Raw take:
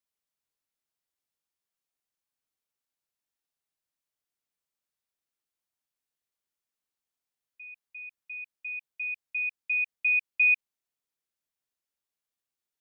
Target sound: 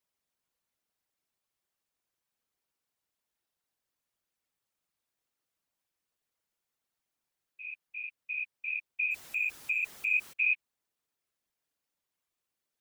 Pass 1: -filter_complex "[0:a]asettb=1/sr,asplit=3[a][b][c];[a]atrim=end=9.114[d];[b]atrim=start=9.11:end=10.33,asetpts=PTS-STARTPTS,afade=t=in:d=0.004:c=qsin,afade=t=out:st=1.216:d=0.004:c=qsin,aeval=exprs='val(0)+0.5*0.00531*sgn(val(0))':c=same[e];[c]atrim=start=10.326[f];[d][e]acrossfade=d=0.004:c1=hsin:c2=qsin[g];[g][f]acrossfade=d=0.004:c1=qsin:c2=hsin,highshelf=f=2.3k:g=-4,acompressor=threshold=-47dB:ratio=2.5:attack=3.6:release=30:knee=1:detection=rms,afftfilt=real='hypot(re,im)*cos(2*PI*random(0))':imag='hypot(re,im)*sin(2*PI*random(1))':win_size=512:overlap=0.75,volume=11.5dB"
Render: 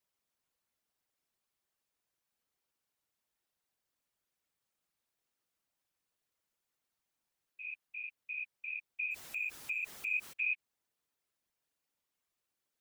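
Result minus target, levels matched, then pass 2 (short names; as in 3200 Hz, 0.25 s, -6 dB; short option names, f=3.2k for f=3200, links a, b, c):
compressor: peak gain reduction +6.5 dB
-filter_complex "[0:a]asettb=1/sr,asplit=3[a][b][c];[a]atrim=end=9.114[d];[b]atrim=start=9.11:end=10.33,asetpts=PTS-STARTPTS,afade=t=in:d=0.004:c=qsin,afade=t=out:st=1.216:d=0.004:c=qsin,aeval=exprs='val(0)+0.5*0.00531*sgn(val(0))':c=same[e];[c]atrim=start=10.326[f];[d][e]acrossfade=d=0.004:c1=hsin:c2=qsin[g];[g][f]acrossfade=d=0.004:c1=qsin:c2=hsin,highshelf=f=2.3k:g=-4,acompressor=threshold=-36.5dB:ratio=2.5:attack=3.6:release=30:knee=1:detection=rms,afftfilt=real='hypot(re,im)*cos(2*PI*random(0))':imag='hypot(re,im)*sin(2*PI*random(1))':win_size=512:overlap=0.75,volume=11.5dB"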